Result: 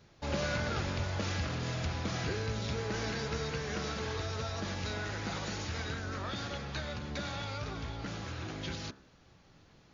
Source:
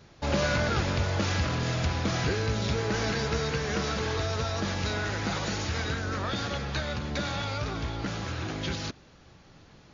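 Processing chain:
hum removal 66.39 Hz, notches 27
level −6.5 dB

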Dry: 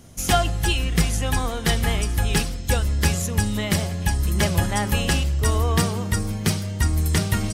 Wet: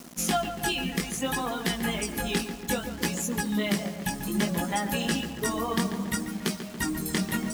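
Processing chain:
reverb reduction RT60 2 s
low shelf with overshoot 140 Hz −13.5 dB, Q 3
downward compressor 5 to 1, threshold −24 dBFS, peak gain reduction 10 dB
chorus effect 0.62 Hz, delay 16 ms, depth 6 ms
bit reduction 8 bits
on a send: feedback echo with a low-pass in the loop 141 ms, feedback 64%, low-pass 2,400 Hz, level −9 dB
on the sum: level +3 dB

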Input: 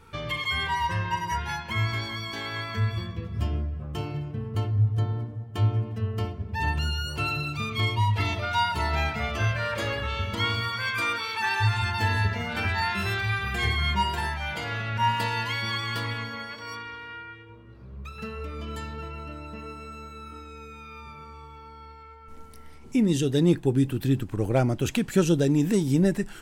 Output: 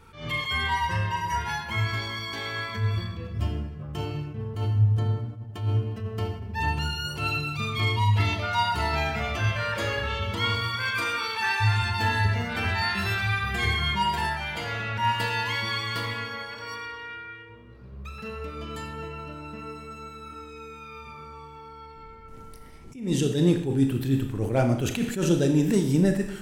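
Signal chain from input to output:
0:21.95–0:22.96: sub-octave generator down 1 octave, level −2 dB
four-comb reverb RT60 0.76 s, combs from 26 ms, DRR 5.5 dB
level that may rise only so fast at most 120 dB per second

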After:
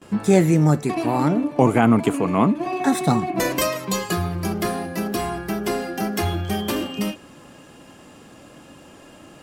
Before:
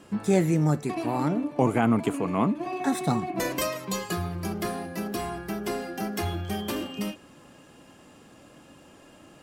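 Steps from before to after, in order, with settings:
noise gate with hold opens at −43 dBFS
level +6.5 dB

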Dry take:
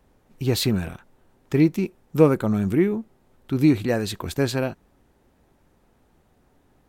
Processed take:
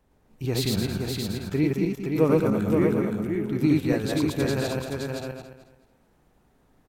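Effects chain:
feedback delay that plays each chunk backwards 109 ms, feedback 52%, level −0.5 dB
single-tap delay 520 ms −4.5 dB
level −6 dB

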